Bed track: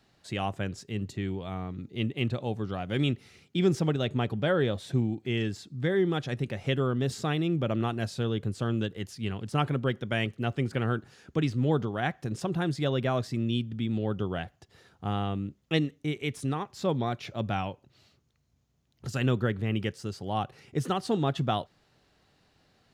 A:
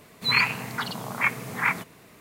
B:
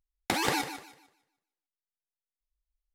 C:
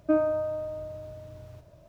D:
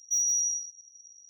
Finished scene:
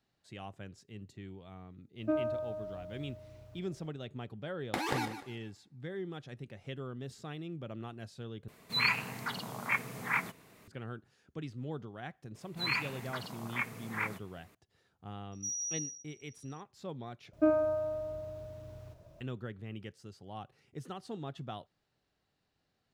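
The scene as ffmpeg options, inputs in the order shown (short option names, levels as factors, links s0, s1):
-filter_complex "[3:a]asplit=2[s0][s1];[1:a]asplit=2[s2][s3];[0:a]volume=0.188[s4];[2:a]highshelf=f=3100:g=-8.5[s5];[4:a]acrossover=split=7700[s6][s7];[s7]acompressor=threshold=0.00282:ratio=4:attack=1:release=60[s8];[s6][s8]amix=inputs=2:normalize=0[s9];[s4]asplit=3[s10][s11][s12];[s10]atrim=end=8.484[s13];[s2]atrim=end=2.2,asetpts=PTS-STARTPTS,volume=0.422[s14];[s11]atrim=start=10.676:end=17.334[s15];[s1]atrim=end=1.88,asetpts=PTS-STARTPTS,volume=0.708[s16];[s12]atrim=start=19.206[s17];[s0]atrim=end=1.88,asetpts=PTS-STARTPTS,volume=0.398,afade=t=in:d=0.004:c=hsin,afade=t=out:st=1.876:d=0.004:c=hsin,adelay=1990[s18];[s5]atrim=end=2.94,asetpts=PTS-STARTPTS,volume=0.631,afade=t=in:d=0.004:c=hsin,afade=t=out:st=2.936:d=0.004:c=hsin,adelay=4440[s19];[s3]atrim=end=2.2,asetpts=PTS-STARTPTS,volume=0.266,afade=t=in:d=0.004:c=hsin,afade=t=out:st=2.196:d=0.004:c=hsin,adelay=12350[s20];[s9]atrim=end=1.29,asetpts=PTS-STARTPTS,volume=0.335,afade=t=in:d=0.004:c=hsin,afade=t=out:st=1.286:d=0.004:c=hsin,adelay=15320[s21];[s13][s14]acrossfade=d=0.004:c1=hsin:c2=hsin[s22];[s22][s15]acrossfade=d=0.004:c1=hsin:c2=hsin[s23];[s23][s16]acrossfade=d=0.004:c1=hsin:c2=hsin[s24];[s24][s17]acrossfade=d=0.004:c1=hsin:c2=hsin[s25];[s25][s18][s19][s20][s21]amix=inputs=5:normalize=0"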